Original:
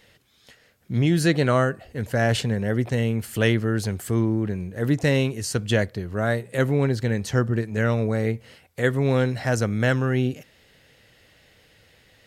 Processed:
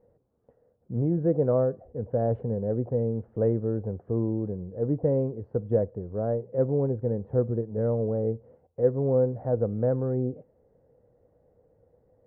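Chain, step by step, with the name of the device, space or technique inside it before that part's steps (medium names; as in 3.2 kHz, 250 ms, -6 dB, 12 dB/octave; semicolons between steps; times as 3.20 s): under water (low-pass 850 Hz 24 dB/octave; peaking EQ 490 Hz +9.5 dB 0.35 oct); trim -6 dB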